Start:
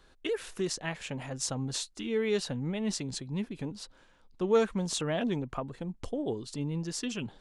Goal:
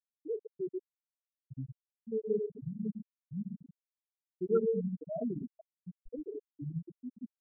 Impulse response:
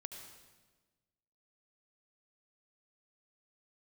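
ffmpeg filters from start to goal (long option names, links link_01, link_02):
-filter_complex "[1:a]atrim=start_sample=2205,afade=type=out:start_time=0.34:duration=0.01,atrim=end_sample=15435,asetrate=48510,aresample=44100[link_01];[0:a][link_01]afir=irnorm=-1:irlink=0,afftfilt=real='re*gte(hypot(re,im),0.112)':imag='im*gte(hypot(re,im),0.112)':win_size=1024:overlap=0.75,volume=2.5dB"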